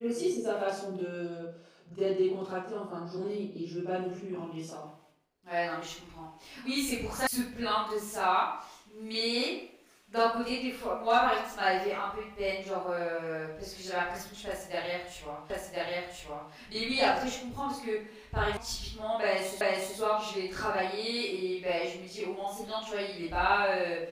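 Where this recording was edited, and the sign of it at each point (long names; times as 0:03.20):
0:07.27: cut off before it has died away
0:15.50: the same again, the last 1.03 s
0:18.57: cut off before it has died away
0:19.61: the same again, the last 0.37 s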